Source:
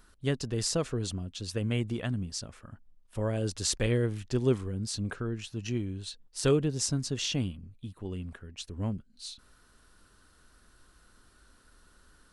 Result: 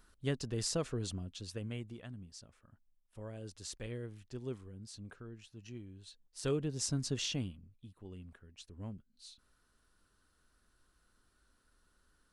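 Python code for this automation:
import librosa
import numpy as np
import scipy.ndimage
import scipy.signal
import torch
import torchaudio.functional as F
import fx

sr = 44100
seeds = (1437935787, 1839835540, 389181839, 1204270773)

y = fx.gain(x, sr, db=fx.line((1.27, -5.5), (2.0, -15.5), (5.91, -15.5), (7.12, -3.0), (7.73, -12.0)))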